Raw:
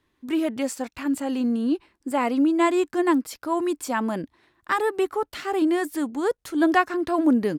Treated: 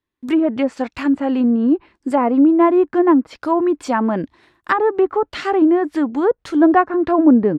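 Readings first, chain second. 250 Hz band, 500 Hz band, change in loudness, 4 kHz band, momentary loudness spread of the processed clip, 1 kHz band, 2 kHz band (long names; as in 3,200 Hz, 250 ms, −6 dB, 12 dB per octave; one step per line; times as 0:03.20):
+8.0 dB, +8.0 dB, +7.5 dB, +0.5 dB, 8 LU, +6.5 dB, +2.5 dB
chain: treble cut that deepens with the level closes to 1,100 Hz, closed at −20 dBFS
noise gate with hold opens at −53 dBFS
level +8 dB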